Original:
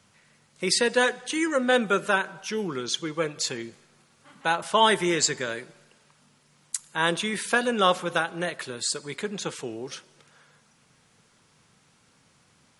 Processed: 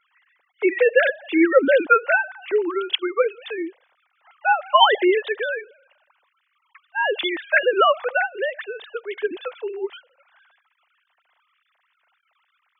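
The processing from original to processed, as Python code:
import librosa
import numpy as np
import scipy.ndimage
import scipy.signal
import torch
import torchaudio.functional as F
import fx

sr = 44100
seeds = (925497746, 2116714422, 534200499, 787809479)

y = fx.sine_speech(x, sr)
y = F.gain(torch.from_numpy(y), 5.5).numpy()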